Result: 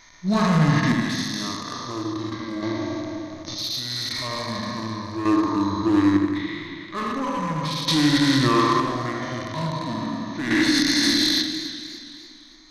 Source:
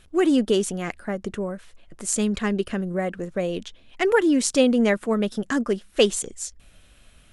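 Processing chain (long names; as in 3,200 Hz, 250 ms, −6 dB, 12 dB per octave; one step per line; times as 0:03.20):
peak hold with a decay on every bin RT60 1.62 s
spectral tilt +2.5 dB per octave
mains-hum notches 60/120/180/240/300 Hz
harmonic and percussive parts rebalanced percussive −16 dB
EQ curve with evenly spaced ripples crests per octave 1.1, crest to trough 9 dB
brickwall limiter −14 dBFS, peak gain reduction 13 dB
hard clipping −21 dBFS, distortion −14 dB
square-wave tremolo 0.66 Hz, depth 60%, duty 35%
wrong playback speed 78 rpm record played at 45 rpm
feedback echo with a low-pass in the loop 81 ms, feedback 64%, low-pass 1,200 Hz, level −4 dB
feedback echo with a swinging delay time 287 ms, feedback 48%, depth 86 cents, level −15 dB
level +5 dB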